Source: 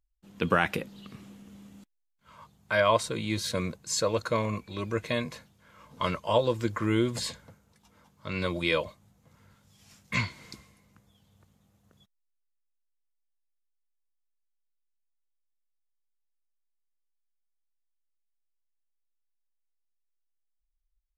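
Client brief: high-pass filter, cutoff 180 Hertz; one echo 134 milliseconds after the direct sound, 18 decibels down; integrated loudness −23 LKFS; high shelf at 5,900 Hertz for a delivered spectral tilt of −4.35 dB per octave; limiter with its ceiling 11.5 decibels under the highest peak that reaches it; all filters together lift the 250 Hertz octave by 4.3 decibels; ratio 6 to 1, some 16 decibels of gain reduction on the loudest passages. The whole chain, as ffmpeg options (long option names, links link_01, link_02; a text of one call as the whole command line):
ffmpeg -i in.wav -af "highpass=180,equalizer=frequency=250:width_type=o:gain=7.5,highshelf=frequency=5900:gain=-9,acompressor=threshold=-35dB:ratio=6,alimiter=level_in=7dB:limit=-24dB:level=0:latency=1,volume=-7dB,aecho=1:1:134:0.126,volume=20.5dB" out.wav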